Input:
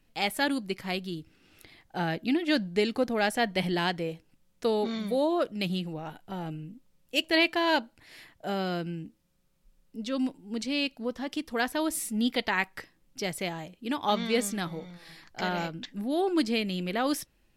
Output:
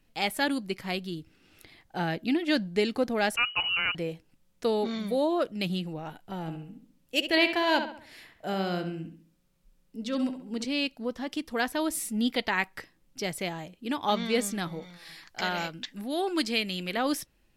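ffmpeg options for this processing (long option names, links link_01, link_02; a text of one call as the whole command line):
ffmpeg -i in.wav -filter_complex "[0:a]asettb=1/sr,asplit=3[link_01][link_02][link_03];[link_01]atrim=end=3.364[link_04];[link_02]atrim=start=3.36:end=3.95,asetpts=PTS-STARTPTS,afade=type=in:duration=0.004:curve=qsin,afade=type=out:start_time=0.586:duration=0.004:curve=qsin,lowpass=frequency=2600:width_type=q:width=0.5098,lowpass=frequency=2600:width_type=q:width=0.6013,lowpass=frequency=2600:width_type=q:width=0.9,lowpass=frequency=2600:width_type=q:width=2.563,afreqshift=-3100[link_05];[link_03]atrim=start=3.946[link_06];[link_04][link_05]acrossfade=duration=0.004:curve1=hsin:curve2=qsin[link_07];[link_07][link_06]acrossfade=duration=0.004:curve1=qsin:curve2=hsin,asettb=1/sr,asplit=3[link_08][link_09][link_10];[link_08]atrim=end=6.414[link_11];[link_09]atrim=start=6.41:end=10.65,asetpts=PTS-STARTPTS,afade=type=in:duration=0.004:curve=qsin,afade=type=out:start_time=4.236:duration=0.004:curve=qsin,asplit=2[link_12][link_13];[link_13]adelay=67,lowpass=frequency=3600:poles=1,volume=-8dB,asplit=2[link_14][link_15];[link_15]adelay=67,lowpass=frequency=3600:poles=1,volume=0.43,asplit=2[link_16][link_17];[link_17]adelay=67,lowpass=frequency=3600:poles=1,volume=0.43,asplit=2[link_18][link_19];[link_19]adelay=67,lowpass=frequency=3600:poles=1,volume=0.43,asplit=2[link_20][link_21];[link_21]adelay=67,lowpass=frequency=3600:poles=1,volume=0.43[link_22];[link_12][link_14][link_16][link_18][link_20][link_22]amix=inputs=6:normalize=0,atrim=end_sample=186984[link_23];[link_10]atrim=start=10.646[link_24];[link_11][link_23]acrossfade=duration=0.004:curve1=hsin:curve2=qsin[link_25];[link_25][link_24]acrossfade=duration=0.004:curve1=qsin:curve2=hsin,asettb=1/sr,asplit=3[link_26][link_27][link_28];[link_26]atrim=end=14.824[link_29];[link_27]atrim=start=14.82:end=16.97,asetpts=PTS-STARTPTS,afade=type=in:duration=0.004:curve=qsin,afade=type=out:start_time=2.146:duration=0.004:curve=qsin,tiltshelf=frequency=860:gain=-4.5[link_30];[link_28]atrim=start=16.966[link_31];[link_29][link_30]acrossfade=duration=0.004:curve1=hsin:curve2=qsin[link_32];[link_32][link_31]acrossfade=duration=0.004:curve1=qsin:curve2=hsin" out.wav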